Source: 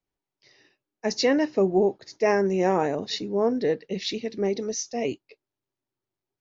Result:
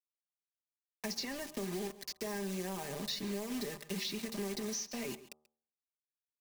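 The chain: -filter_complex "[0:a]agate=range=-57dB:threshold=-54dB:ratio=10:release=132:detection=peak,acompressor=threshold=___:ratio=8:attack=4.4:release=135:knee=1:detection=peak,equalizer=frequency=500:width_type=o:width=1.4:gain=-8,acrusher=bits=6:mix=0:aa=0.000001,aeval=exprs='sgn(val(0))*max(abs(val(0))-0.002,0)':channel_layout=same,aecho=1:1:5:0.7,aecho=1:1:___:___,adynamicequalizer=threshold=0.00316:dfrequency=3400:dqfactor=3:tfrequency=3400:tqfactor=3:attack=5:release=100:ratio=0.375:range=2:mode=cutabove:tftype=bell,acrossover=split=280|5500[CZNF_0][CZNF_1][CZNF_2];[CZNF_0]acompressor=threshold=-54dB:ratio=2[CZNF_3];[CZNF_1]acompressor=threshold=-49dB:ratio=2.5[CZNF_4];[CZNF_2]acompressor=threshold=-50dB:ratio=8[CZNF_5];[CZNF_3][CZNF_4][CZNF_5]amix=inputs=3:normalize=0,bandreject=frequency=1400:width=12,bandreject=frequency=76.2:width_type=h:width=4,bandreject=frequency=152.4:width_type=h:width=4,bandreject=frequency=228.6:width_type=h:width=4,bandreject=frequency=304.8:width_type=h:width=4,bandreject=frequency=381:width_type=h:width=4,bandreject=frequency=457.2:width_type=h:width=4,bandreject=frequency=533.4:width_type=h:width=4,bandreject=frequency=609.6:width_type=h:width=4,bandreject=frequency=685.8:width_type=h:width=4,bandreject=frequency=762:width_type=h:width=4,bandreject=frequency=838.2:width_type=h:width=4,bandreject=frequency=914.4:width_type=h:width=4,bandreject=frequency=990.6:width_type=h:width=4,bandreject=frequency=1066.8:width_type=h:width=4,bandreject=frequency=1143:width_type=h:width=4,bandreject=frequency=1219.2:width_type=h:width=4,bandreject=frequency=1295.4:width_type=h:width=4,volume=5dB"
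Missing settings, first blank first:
-29dB, 135, 0.0891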